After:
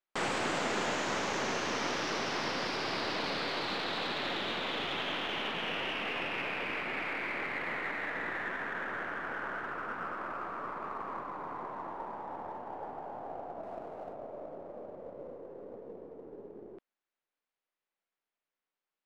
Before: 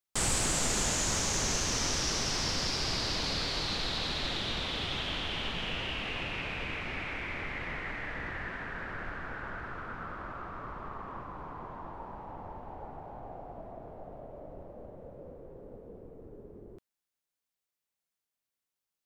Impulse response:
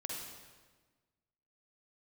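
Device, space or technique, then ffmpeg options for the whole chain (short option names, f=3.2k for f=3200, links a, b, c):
crystal radio: -filter_complex "[0:a]highpass=270,lowpass=2.5k,aeval=exprs='if(lt(val(0),0),0.708*val(0),val(0))':c=same,asettb=1/sr,asplit=3[a][b][c];[a]atrim=end=13.634[d];[b]atrim=start=13.63:end=14.13,asetpts=PTS-STARTPTS,afade=t=in:d=0.004:c=qsin,afade=t=out:st=0.496:d=0.004:c=qsin,highshelf=f=2.4k:g=8[e];[c]atrim=start=14.126[f];[d][e]acrossfade=d=0.004:c1=hsin:c2=qsin[g];[g][f]acrossfade=d=0.004:c1=qsin:c2=hsin,volume=5dB"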